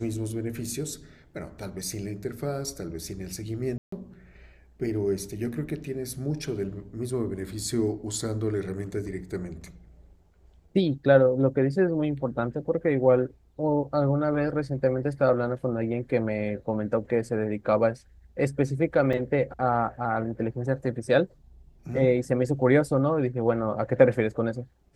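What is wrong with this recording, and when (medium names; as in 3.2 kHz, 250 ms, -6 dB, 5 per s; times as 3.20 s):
3.78–3.92 s: dropout 144 ms
19.13 s: dropout 4.3 ms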